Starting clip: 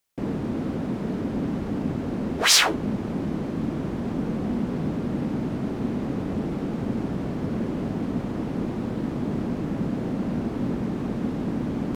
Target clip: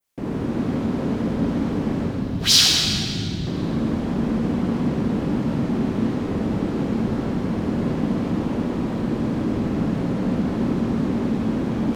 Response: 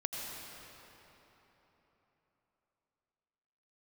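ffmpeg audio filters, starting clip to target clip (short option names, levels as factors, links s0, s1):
-filter_complex "[0:a]asettb=1/sr,asplit=3[s0][s1][s2];[s0]atrim=end=2.064[s3];[s1]atrim=start=2.06:end=3.47,asetpts=PTS-STARTPTS,afade=t=in:d=0.004:c=qsin,afade=t=out:st=1.406:d=0.004:c=qsin,equalizer=f=125:t=o:w=1:g=6,equalizer=f=250:t=o:w=1:g=-6,equalizer=f=500:t=o:w=1:g=-9,equalizer=f=1000:t=o:w=1:g=-12,equalizer=f=2000:t=o:w=1:g=-9,equalizer=f=4000:t=o:w=1:g=3,equalizer=f=8000:t=o:w=1:g=-6[s4];[s2]atrim=start=3.466[s5];[s3][s4]acrossfade=d=0.004:c1=hsin:c2=qsin[s6];[s6][s5]acrossfade=d=0.004:c1=qsin:c2=hsin[s7];[1:a]atrim=start_sample=2205,asetrate=70560,aresample=44100[s8];[s7][s8]afir=irnorm=-1:irlink=0,adynamicequalizer=threshold=0.00447:dfrequency=4200:dqfactor=0.73:tfrequency=4200:tqfactor=0.73:attack=5:release=100:ratio=0.375:range=2:mode=boostabove:tftype=bell,volume=1.88"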